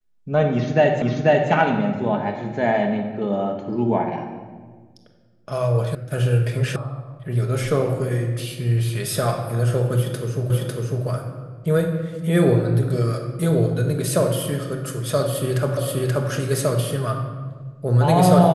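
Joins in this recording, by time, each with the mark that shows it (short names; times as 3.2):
1.02 repeat of the last 0.49 s
5.95 sound cut off
6.76 sound cut off
10.5 repeat of the last 0.55 s
15.77 repeat of the last 0.53 s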